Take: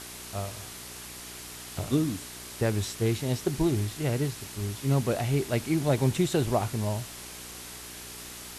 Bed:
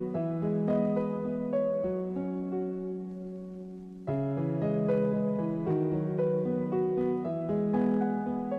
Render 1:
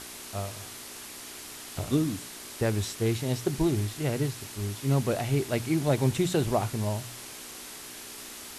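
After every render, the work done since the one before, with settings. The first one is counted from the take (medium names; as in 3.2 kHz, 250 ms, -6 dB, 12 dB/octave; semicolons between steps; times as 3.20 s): de-hum 60 Hz, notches 3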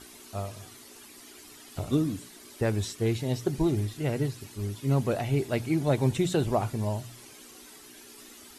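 noise reduction 11 dB, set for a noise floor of -43 dBFS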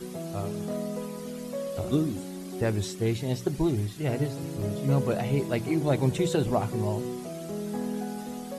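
add bed -5 dB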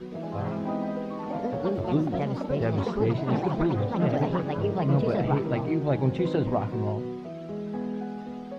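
ever faster or slower copies 113 ms, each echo +4 st, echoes 3; distance through air 260 m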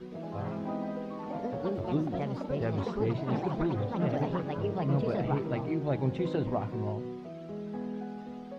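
trim -5 dB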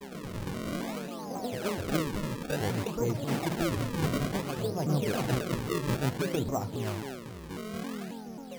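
decimation with a swept rate 34×, swing 160% 0.57 Hz; vibrato with a chosen wave saw down 3.7 Hz, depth 250 cents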